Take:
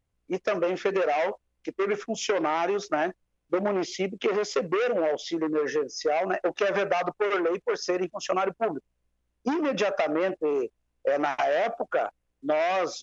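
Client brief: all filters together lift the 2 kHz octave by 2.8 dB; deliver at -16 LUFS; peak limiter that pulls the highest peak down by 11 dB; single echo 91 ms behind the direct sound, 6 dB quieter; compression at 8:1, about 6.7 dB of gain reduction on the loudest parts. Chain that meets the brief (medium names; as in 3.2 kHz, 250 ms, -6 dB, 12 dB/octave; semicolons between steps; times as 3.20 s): peaking EQ 2 kHz +3.5 dB; compression 8:1, threshold -28 dBFS; peak limiter -25.5 dBFS; delay 91 ms -6 dB; trim +18.5 dB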